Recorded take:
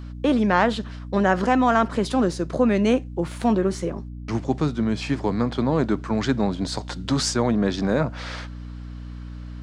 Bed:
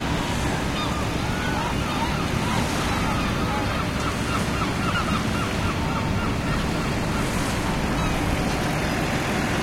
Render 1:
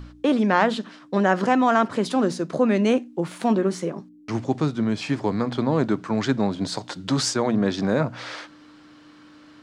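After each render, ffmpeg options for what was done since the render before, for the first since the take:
-af "bandreject=f=60:t=h:w=4,bandreject=f=120:t=h:w=4,bandreject=f=180:t=h:w=4,bandreject=f=240:t=h:w=4"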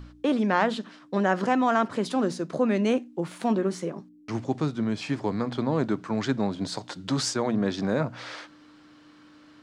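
-af "volume=-4dB"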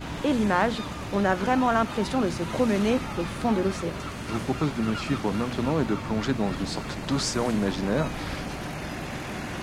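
-filter_complex "[1:a]volume=-10dB[a];[0:a][a]amix=inputs=2:normalize=0"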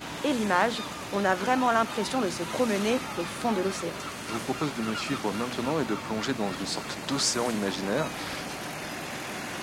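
-af "highpass=f=320:p=1,highshelf=f=4.9k:g=6"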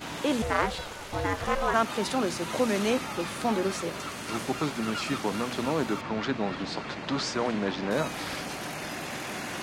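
-filter_complex "[0:a]asettb=1/sr,asplit=3[a][b][c];[a]atrim=end=0.424[d];[b]atrim=start=0.42:end=1.74,asetpts=PTS-STARTPTS,afade=t=in:d=0.004:c=qsin,afade=t=out:st=1.316:d=0.004:c=qsin,aeval=exprs='val(0)*sin(2*PI*280*n/s)':c=same[e];[c]atrim=start=1.736[f];[d][e]acrossfade=d=0.004:c1=hsin:c2=qsin[g];[g][f]acrossfade=d=0.004:c1=qsin:c2=hsin,asettb=1/sr,asplit=3[h][i][j];[h]atrim=end=6.014[k];[i]atrim=start=6.01:end=7.91,asetpts=PTS-STARTPTS,afade=t=in:d=0.004:c=qsin,afade=t=out:st=1.896:d=0.004:c=qsin,lowpass=3.7k[l];[j]atrim=start=7.906[m];[k][l]acrossfade=d=0.004:c1=hsin:c2=qsin[n];[n][m]acrossfade=d=0.004:c1=qsin:c2=hsin"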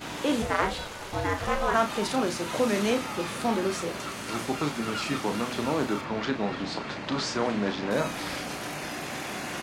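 -filter_complex "[0:a]asplit=2[a][b];[b]adelay=34,volume=-7.5dB[c];[a][c]amix=inputs=2:normalize=0,aecho=1:1:430:0.0668"

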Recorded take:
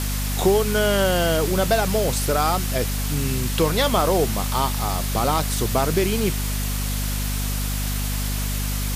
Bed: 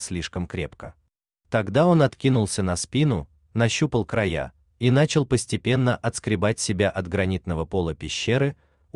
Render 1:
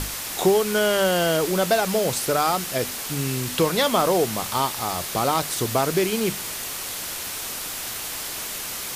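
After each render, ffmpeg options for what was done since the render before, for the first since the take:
-af "bandreject=f=50:t=h:w=6,bandreject=f=100:t=h:w=6,bandreject=f=150:t=h:w=6,bandreject=f=200:t=h:w=6,bandreject=f=250:t=h:w=6"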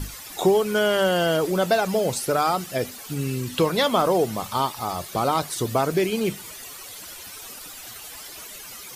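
-af "afftdn=nr=13:nf=-32"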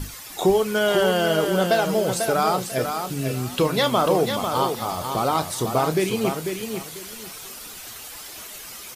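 -filter_complex "[0:a]asplit=2[a][b];[b]adelay=32,volume=-13dB[c];[a][c]amix=inputs=2:normalize=0,aecho=1:1:494|988|1482:0.473|0.109|0.025"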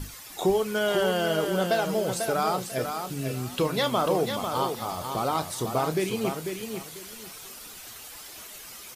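-af "volume=-5dB"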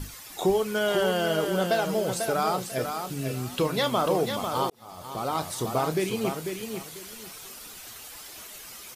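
-filter_complex "[0:a]asplit=2[a][b];[a]atrim=end=4.7,asetpts=PTS-STARTPTS,afade=t=out:st=4.696:d=0.004:c=hsin[c];[b]atrim=start=4.7,asetpts=PTS-STARTPTS,afade=t=in:d=0.77[d];[c][d]concat=n=2:v=0:a=1"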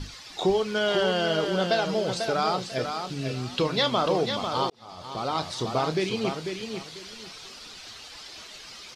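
-af "lowpass=f=4.6k:t=q:w=2"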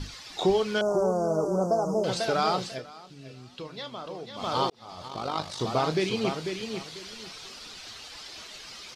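-filter_complex "[0:a]asettb=1/sr,asplit=3[a][b][c];[a]atrim=end=0.814[d];[b]atrim=start=0.81:end=2.04,asetpts=PTS-STARTPTS,afade=t=in:d=0.004:c=qsin,afade=t=out:st=1.226:d=0.004:c=qsin,asuperstop=centerf=2700:order=12:qfactor=0.58[e];[c]atrim=start=2.036[f];[d][e]acrossfade=d=0.004:c1=hsin:c2=qsin[g];[g][f]acrossfade=d=0.004:c1=qsin:c2=hsin,asettb=1/sr,asplit=3[h][i][j];[h]atrim=end=5.084[k];[i]atrim=start=5.08:end=5.61,asetpts=PTS-STARTPTS,afade=t=in:d=0.004:c=qsin,afade=t=out:st=0.526:d=0.004:c=qsin,tremolo=f=50:d=0.667[l];[j]atrim=start=5.606[m];[k][l]acrossfade=d=0.004:c1=hsin:c2=qsin[n];[n][m]acrossfade=d=0.004:c1=qsin:c2=hsin,asplit=3[o][p][q];[o]atrim=end=2.82,asetpts=PTS-STARTPTS,afade=t=out:st=2.67:d=0.15:silence=0.188365[r];[p]atrim=start=2.82:end=4.34,asetpts=PTS-STARTPTS,volume=-14.5dB[s];[q]atrim=start=4.34,asetpts=PTS-STARTPTS,afade=t=in:d=0.15:silence=0.188365[t];[r][s][t]concat=n=3:v=0:a=1"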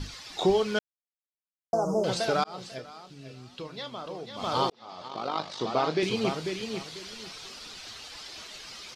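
-filter_complex "[0:a]asettb=1/sr,asplit=3[a][b][c];[a]atrim=end=4.724[d];[b]atrim=start=4.72:end=6.03,asetpts=PTS-STARTPTS,afade=t=in:d=0.004:c=qsin,afade=t=out:st=1.306:d=0.004:c=qsin,highpass=200,lowpass=5k[e];[c]atrim=start=6.026[f];[d][e]acrossfade=d=0.004:c1=hsin:c2=qsin[g];[g][f]acrossfade=d=0.004:c1=qsin:c2=hsin,asplit=4[h][i][j][k];[h]atrim=end=0.79,asetpts=PTS-STARTPTS,afade=t=out:st=0.786:d=0.004:c=hsin[l];[i]atrim=start=0.79:end=1.73,asetpts=PTS-STARTPTS,volume=0[m];[j]atrim=start=1.73:end=2.44,asetpts=PTS-STARTPTS,afade=t=in:d=0.004:c=hsin,afade=t=out:st=0.706:d=0.004:c=hsin[n];[k]atrim=start=2.44,asetpts=PTS-STARTPTS,afade=t=in:d=0.45[o];[l][m][n][o]concat=n=4:v=0:a=1"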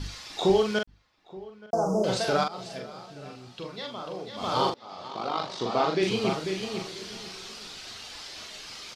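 -filter_complex "[0:a]asplit=2[a][b];[b]adelay=42,volume=-4dB[c];[a][c]amix=inputs=2:normalize=0,asplit=2[d][e];[e]adelay=874.6,volume=-20dB,highshelf=f=4k:g=-19.7[f];[d][f]amix=inputs=2:normalize=0"

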